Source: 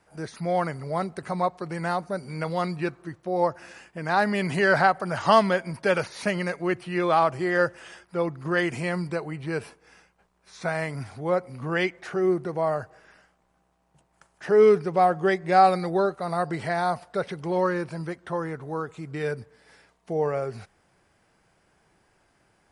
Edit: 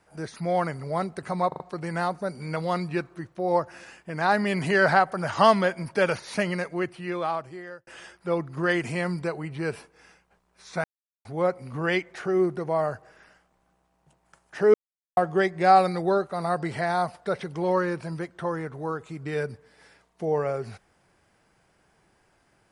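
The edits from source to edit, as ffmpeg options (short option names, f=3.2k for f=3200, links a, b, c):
-filter_complex "[0:a]asplit=9[a][b][c][d][e][f][g][h][i];[a]atrim=end=1.522[j];[b]atrim=start=1.478:end=1.522[k];[c]atrim=start=1.478:end=1.522[l];[d]atrim=start=1.478:end=7.75,asetpts=PTS-STARTPTS,afade=t=out:st=4.892:d=1.38[m];[e]atrim=start=7.75:end=10.72,asetpts=PTS-STARTPTS,afade=t=in:d=0.004:c=hsin,afade=t=out:st=2.966:d=0.004:c=hsin[n];[f]atrim=start=10.72:end=11.13,asetpts=PTS-STARTPTS,volume=0[o];[g]atrim=start=11.13:end=14.62,asetpts=PTS-STARTPTS,afade=t=in:d=0.004:c=hsin,afade=t=out:st=3.486:d=0.004:c=hsin[p];[h]atrim=start=14.62:end=15.05,asetpts=PTS-STARTPTS,volume=0[q];[i]atrim=start=15.05,asetpts=PTS-STARTPTS,afade=t=in:d=0.004:c=hsin[r];[j][k]acrossfade=d=0.004:c1=hsin:c2=hsin[s];[s][l]acrossfade=d=0.004:c1=hsin:c2=hsin[t];[m][n][o][p][q][r]concat=n=6:v=0:a=1[u];[t][u]acrossfade=d=0.004:c1=hsin:c2=hsin"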